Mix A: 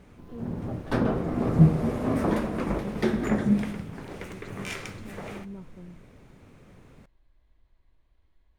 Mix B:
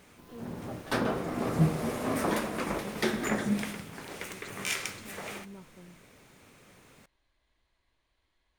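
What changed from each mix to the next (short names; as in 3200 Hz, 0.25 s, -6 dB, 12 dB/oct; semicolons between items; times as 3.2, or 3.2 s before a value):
master: add tilt +3 dB/oct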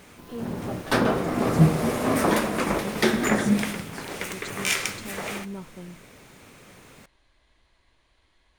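speech +11.0 dB; background +7.5 dB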